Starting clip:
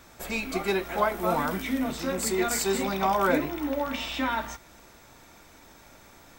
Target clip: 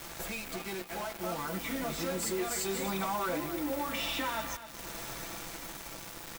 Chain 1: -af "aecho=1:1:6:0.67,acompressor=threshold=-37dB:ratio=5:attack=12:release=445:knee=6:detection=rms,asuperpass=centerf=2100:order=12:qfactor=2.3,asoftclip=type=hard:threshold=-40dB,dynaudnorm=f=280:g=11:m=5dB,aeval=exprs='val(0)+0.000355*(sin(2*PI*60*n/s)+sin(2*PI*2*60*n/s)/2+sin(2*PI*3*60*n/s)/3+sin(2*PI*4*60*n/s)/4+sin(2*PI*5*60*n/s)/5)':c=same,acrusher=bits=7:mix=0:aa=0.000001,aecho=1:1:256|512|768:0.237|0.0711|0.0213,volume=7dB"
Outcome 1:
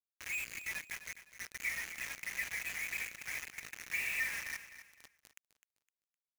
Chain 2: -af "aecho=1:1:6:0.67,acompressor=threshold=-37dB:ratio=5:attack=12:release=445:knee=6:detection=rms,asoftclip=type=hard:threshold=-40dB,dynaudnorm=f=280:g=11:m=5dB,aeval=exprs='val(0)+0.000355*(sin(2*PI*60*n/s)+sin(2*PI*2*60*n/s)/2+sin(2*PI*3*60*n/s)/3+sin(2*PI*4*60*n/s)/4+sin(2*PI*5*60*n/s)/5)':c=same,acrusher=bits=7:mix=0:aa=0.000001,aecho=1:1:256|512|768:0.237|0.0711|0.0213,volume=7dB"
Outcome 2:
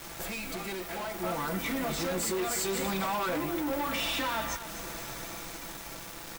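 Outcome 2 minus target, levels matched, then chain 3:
compressor: peak gain reduction -5.5 dB
-af "aecho=1:1:6:0.67,acompressor=threshold=-44dB:ratio=5:attack=12:release=445:knee=6:detection=rms,asoftclip=type=hard:threshold=-40dB,dynaudnorm=f=280:g=11:m=5dB,aeval=exprs='val(0)+0.000355*(sin(2*PI*60*n/s)+sin(2*PI*2*60*n/s)/2+sin(2*PI*3*60*n/s)/3+sin(2*PI*4*60*n/s)/4+sin(2*PI*5*60*n/s)/5)':c=same,acrusher=bits=7:mix=0:aa=0.000001,aecho=1:1:256|512|768:0.237|0.0711|0.0213,volume=7dB"

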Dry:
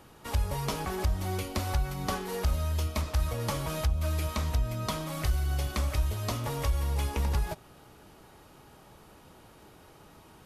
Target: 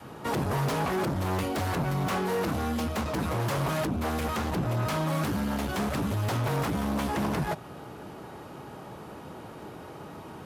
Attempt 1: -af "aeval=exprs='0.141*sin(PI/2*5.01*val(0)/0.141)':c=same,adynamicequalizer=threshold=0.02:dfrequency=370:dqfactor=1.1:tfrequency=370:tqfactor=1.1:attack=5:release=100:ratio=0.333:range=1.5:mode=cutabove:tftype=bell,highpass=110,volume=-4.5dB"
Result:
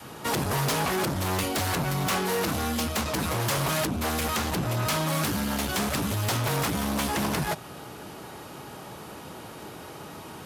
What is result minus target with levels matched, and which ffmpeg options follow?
4000 Hz band +6.0 dB
-af "aeval=exprs='0.141*sin(PI/2*5.01*val(0)/0.141)':c=same,adynamicequalizer=threshold=0.02:dfrequency=370:dqfactor=1.1:tfrequency=370:tqfactor=1.1:attack=5:release=100:ratio=0.333:range=1.5:mode=cutabove:tftype=bell,highpass=110,highshelf=f=2.3k:g=-11.5,volume=-4.5dB"

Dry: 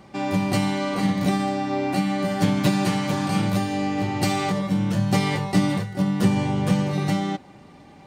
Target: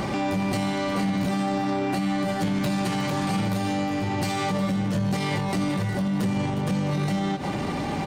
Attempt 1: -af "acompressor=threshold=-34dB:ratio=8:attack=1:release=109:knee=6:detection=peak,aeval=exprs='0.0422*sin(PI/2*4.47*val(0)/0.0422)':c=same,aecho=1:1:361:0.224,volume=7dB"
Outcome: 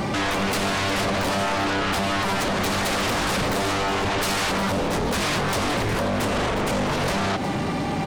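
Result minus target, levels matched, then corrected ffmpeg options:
compressor: peak gain reduction -9.5 dB
-af "acompressor=threshold=-45dB:ratio=8:attack=1:release=109:knee=6:detection=peak,aeval=exprs='0.0422*sin(PI/2*4.47*val(0)/0.0422)':c=same,aecho=1:1:361:0.224,volume=7dB"

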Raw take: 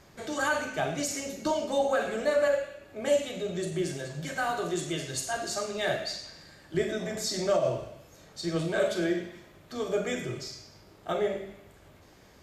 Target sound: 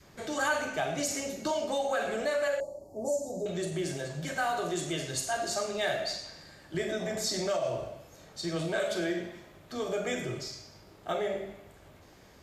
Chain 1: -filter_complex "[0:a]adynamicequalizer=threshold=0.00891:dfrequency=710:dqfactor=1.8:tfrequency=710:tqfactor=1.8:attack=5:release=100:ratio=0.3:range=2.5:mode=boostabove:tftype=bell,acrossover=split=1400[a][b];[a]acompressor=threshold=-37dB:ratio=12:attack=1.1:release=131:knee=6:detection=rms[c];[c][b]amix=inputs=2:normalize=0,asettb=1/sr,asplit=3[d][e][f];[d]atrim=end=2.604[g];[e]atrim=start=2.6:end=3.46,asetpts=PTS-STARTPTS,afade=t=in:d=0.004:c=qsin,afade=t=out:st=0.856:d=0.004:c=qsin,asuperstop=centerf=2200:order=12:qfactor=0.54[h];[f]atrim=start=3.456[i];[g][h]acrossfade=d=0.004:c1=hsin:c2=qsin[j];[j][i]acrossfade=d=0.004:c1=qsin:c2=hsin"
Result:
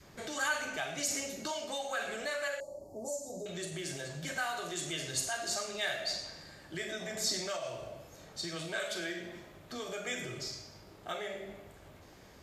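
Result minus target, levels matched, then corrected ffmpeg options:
compressor: peak gain reduction +10.5 dB
-filter_complex "[0:a]adynamicequalizer=threshold=0.00891:dfrequency=710:dqfactor=1.8:tfrequency=710:tqfactor=1.8:attack=5:release=100:ratio=0.3:range=2.5:mode=boostabove:tftype=bell,acrossover=split=1400[a][b];[a]acompressor=threshold=-25.5dB:ratio=12:attack=1.1:release=131:knee=6:detection=rms[c];[c][b]amix=inputs=2:normalize=0,asettb=1/sr,asplit=3[d][e][f];[d]atrim=end=2.604[g];[e]atrim=start=2.6:end=3.46,asetpts=PTS-STARTPTS,afade=t=in:d=0.004:c=qsin,afade=t=out:st=0.856:d=0.004:c=qsin,asuperstop=centerf=2200:order=12:qfactor=0.54[h];[f]atrim=start=3.456[i];[g][h]acrossfade=d=0.004:c1=hsin:c2=qsin[j];[j][i]acrossfade=d=0.004:c1=qsin:c2=hsin"

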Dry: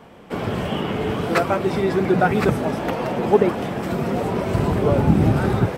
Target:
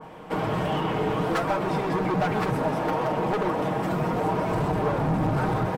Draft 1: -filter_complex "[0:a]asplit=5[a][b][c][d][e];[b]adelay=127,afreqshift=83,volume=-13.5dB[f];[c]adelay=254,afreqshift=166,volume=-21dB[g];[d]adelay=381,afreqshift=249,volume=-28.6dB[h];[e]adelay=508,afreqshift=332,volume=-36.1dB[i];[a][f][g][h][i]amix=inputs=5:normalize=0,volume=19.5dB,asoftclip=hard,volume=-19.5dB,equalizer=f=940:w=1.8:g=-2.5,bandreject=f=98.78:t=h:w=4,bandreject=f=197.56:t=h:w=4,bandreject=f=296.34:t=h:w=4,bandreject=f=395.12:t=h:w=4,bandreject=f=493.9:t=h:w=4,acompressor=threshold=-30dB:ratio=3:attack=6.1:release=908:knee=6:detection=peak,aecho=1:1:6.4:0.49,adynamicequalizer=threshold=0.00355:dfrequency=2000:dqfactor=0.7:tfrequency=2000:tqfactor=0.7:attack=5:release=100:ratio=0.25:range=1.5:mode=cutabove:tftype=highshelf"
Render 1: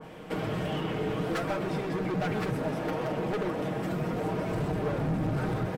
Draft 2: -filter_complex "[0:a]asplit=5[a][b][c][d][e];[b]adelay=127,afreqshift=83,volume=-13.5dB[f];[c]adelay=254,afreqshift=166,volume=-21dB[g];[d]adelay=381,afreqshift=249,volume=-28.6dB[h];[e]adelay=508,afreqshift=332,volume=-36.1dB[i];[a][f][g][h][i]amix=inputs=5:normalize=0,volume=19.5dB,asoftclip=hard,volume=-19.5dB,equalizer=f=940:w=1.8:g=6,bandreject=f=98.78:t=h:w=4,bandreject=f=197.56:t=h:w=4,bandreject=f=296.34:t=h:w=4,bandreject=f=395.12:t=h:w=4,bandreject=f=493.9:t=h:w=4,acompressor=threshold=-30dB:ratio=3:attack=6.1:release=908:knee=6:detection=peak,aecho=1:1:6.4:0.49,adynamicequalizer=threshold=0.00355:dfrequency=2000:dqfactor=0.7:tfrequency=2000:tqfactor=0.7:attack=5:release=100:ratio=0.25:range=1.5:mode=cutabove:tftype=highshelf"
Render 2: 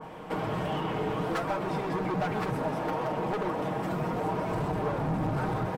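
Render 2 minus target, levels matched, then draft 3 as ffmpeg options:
compressor: peak gain reduction +5.5 dB
-filter_complex "[0:a]asplit=5[a][b][c][d][e];[b]adelay=127,afreqshift=83,volume=-13.5dB[f];[c]adelay=254,afreqshift=166,volume=-21dB[g];[d]adelay=381,afreqshift=249,volume=-28.6dB[h];[e]adelay=508,afreqshift=332,volume=-36.1dB[i];[a][f][g][h][i]amix=inputs=5:normalize=0,volume=19.5dB,asoftclip=hard,volume=-19.5dB,equalizer=f=940:w=1.8:g=6,bandreject=f=98.78:t=h:w=4,bandreject=f=197.56:t=h:w=4,bandreject=f=296.34:t=h:w=4,bandreject=f=395.12:t=h:w=4,bandreject=f=493.9:t=h:w=4,acompressor=threshold=-22dB:ratio=3:attack=6.1:release=908:knee=6:detection=peak,aecho=1:1:6.4:0.49,adynamicequalizer=threshold=0.00355:dfrequency=2000:dqfactor=0.7:tfrequency=2000:tqfactor=0.7:attack=5:release=100:ratio=0.25:range=1.5:mode=cutabove:tftype=highshelf"

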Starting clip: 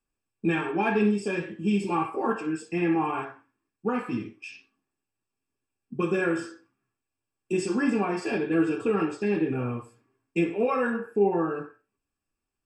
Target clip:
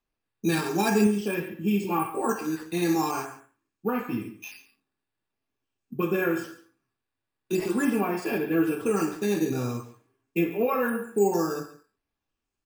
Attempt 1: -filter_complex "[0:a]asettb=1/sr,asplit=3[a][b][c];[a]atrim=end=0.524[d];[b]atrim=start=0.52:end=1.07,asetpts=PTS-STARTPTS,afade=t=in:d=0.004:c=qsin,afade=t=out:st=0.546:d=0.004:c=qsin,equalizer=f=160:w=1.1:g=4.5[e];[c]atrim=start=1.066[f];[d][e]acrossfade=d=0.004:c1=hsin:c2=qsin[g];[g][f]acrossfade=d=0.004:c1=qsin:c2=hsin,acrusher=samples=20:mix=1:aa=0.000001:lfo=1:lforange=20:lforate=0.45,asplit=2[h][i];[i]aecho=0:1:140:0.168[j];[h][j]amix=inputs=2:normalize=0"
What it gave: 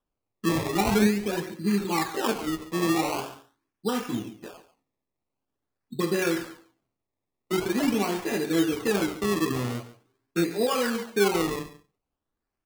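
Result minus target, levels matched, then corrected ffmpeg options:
decimation with a swept rate: distortion +11 dB
-filter_complex "[0:a]asettb=1/sr,asplit=3[a][b][c];[a]atrim=end=0.524[d];[b]atrim=start=0.52:end=1.07,asetpts=PTS-STARTPTS,afade=t=in:d=0.004:c=qsin,afade=t=out:st=0.546:d=0.004:c=qsin,equalizer=f=160:w=1.1:g=4.5[e];[c]atrim=start=1.066[f];[d][e]acrossfade=d=0.004:c1=hsin:c2=qsin[g];[g][f]acrossfade=d=0.004:c1=qsin:c2=hsin,acrusher=samples=5:mix=1:aa=0.000001:lfo=1:lforange=5:lforate=0.45,asplit=2[h][i];[i]aecho=0:1:140:0.168[j];[h][j]amix=inputs=2:normalize=0"

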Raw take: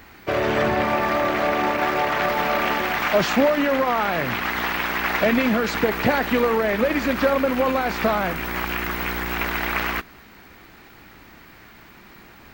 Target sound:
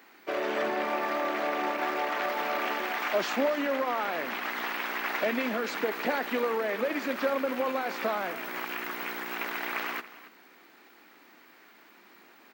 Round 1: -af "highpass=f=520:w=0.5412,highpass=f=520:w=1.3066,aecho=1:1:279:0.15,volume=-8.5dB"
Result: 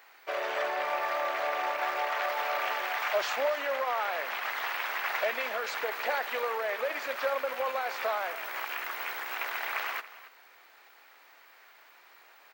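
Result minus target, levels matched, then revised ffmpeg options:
250 Hz band -17.5 dB
-af "highpass=f=250:w=0.5412,highpass=f=250:w=1.3066,aecho=1:1:279:0.15,volume=-8.5dB"

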